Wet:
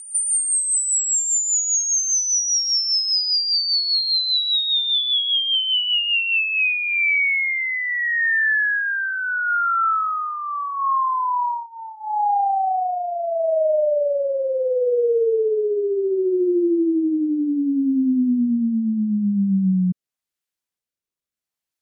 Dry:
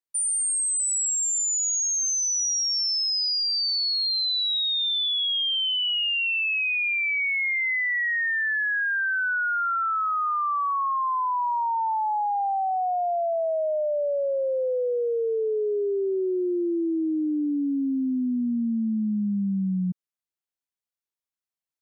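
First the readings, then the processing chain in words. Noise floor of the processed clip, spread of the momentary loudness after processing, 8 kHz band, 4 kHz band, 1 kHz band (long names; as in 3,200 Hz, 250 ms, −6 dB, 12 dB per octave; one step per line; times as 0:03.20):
below −85 dBFS, 5 LU, +4.5 dB, +4.5 dB, +3.0 dB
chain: echo ahead of the sound 189 ms −14.5 dB
rotating-speaker cabinet horn 5 Hz, later 0.75 Hz, at 0:06.19
level +7 dB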